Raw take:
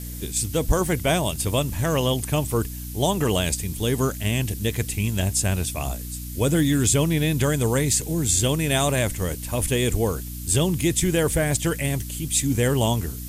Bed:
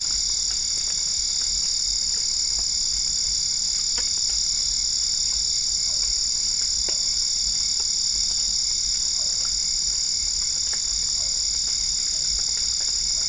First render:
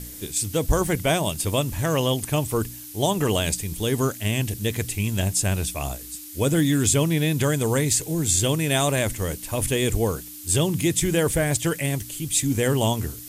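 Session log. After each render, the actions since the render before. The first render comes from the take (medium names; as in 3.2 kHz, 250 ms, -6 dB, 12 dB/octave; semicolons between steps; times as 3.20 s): de-hum 60 Hz, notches 4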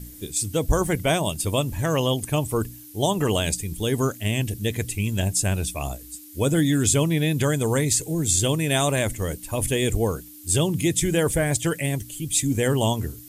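noise reduction 8 dB, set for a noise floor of -39 dBFS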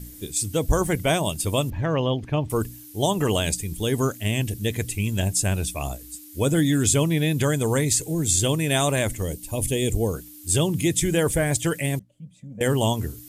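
1.70–2.50 s: distance through air 260 m; 9.22–10.14 s: peaking EQ 1.4 kHz -12 dB 1.1 oct; 11.99–12.61 s: two resonant band-passes 330 Hz, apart 1.6 oct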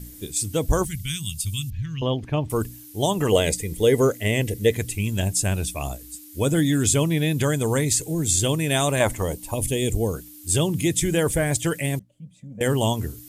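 0.85–2.02 s: Chebyshev band-stop 120–3400 Hz; 3.32–4.74 s: small resonant body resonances 480/2000 Hz, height 12 dB, ringing for 20 ms; 9.00–9.54 s: peaking EQ 930 Hz +13 dB 1.3 oct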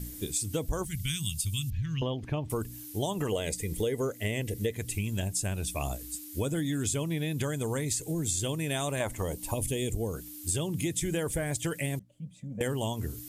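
compression 6:1, threshold -28 dBFS, peak gain reduction 14 dB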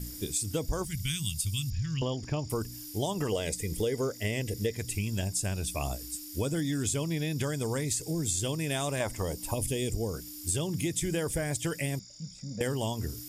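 add bed -27.5 dB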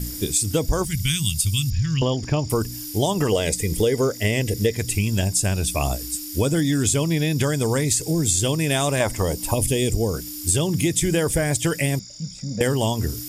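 trim +10 dB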